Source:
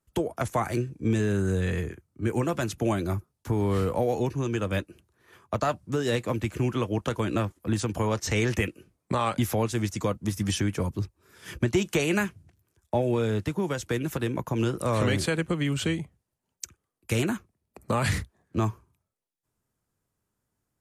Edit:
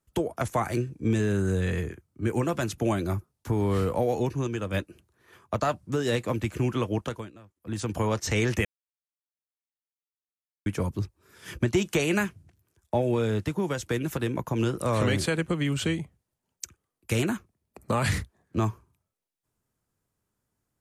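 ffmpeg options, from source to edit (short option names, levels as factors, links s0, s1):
-filter_complex "[0:a]asplit=7[s0][s1][s2][s3][s4][s5][s6];[s0]atrim=end=4.472[s7];[s1]atrim=start=4.468:end=4.742,asetpts=PTS-STARTPTS,volume=0.708[s8];[s2]atrim=start=4.738:end=7.32,asetpts=PTS-STARTPTS,afade=t=out:st=2.212:d=0.37:silence=0.0630957[s9];[s3]atrim=start=7.32:end=7.56,asetpts=PTS-STARTPTS,volume=0.0631[s10];[s4]atrim=start=7.56:end=8.65,asetpts=PTS-STARTPTS,afade=t=in:d=0.37:silence=0.0630957,afade=t=out:st=1.086:d=0.004:c=hsin[s11];[s5]atrim=start=8.65:end=10.66,asetpts=PTS-STARTPTS,volume=0[s12];[s6]atrim=start=10.66,asetpts=PTS-STARTPTS,afade=t=in:d=0.004:c=hsin[s13];[s7][s8]acrossfade=d=0.004:c1=hsin:c2=hsin[s14];[s9][s10][s11][s12][s13]concat=n=5:v=0:a=1[s15];[s14][s15]acrossfade=d=0.004:c1=hsin:c2=hsin"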